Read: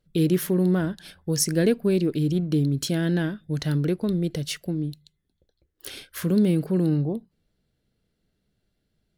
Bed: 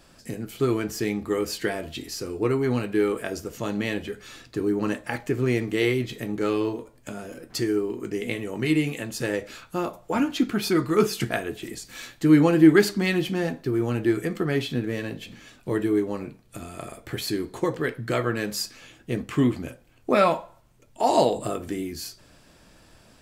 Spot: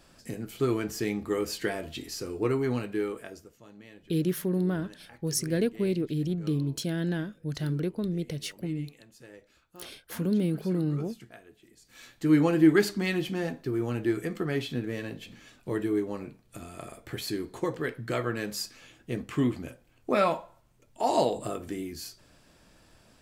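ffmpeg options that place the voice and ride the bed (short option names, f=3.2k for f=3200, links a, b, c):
-filter_complex "[0:a]adelay=3950,volume=-6dB[a];[1:a]volume=14.5dB,afade=t=out:st=2.58:d=0.99:silence=0.105925,afade=t=in:st=11.76:d=0.59:silence=0.125893[b];[a][b]amix=inputs=2:normalize=0"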